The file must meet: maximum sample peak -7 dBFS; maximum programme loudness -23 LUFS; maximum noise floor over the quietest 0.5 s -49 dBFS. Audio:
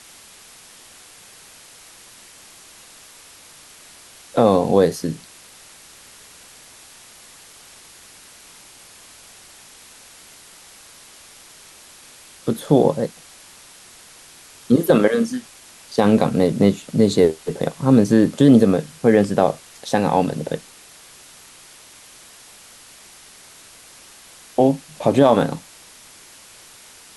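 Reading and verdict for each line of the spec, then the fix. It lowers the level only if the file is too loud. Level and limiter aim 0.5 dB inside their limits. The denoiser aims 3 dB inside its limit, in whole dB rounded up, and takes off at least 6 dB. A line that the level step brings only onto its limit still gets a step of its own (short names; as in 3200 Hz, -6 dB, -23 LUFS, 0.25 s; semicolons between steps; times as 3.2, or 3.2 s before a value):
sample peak -3.0 dBFS: fail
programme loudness -18.0 LUFS: fail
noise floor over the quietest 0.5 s -45 dBFS: fail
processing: gain -5.5 dB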